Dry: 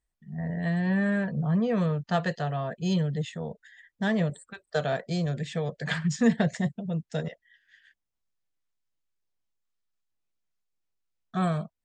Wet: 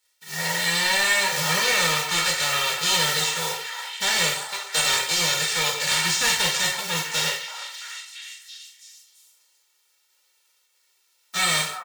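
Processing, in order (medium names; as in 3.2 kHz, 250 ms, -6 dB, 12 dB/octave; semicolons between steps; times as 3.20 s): formants flattened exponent 0.3; high-pass 690 Hz 6 dB/octave; peaking EQ 4.5 kHz +6.5 dB 2.5 oct; comb 2.2 ms, depth 93%; in parallel at 0 dB: peak limiter -19.5 dBFS, peak gain reduction 13.5 dB; on the sum: saturation -18 dBFS, distortion -12 dB; on a send: repeats whose band climbs or falls 335 ms, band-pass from 1 kHz, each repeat 0.7 oct, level -6 dB; on the sum: gated-style reverb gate 200 ms falling, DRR -1 dB; trim -1 dB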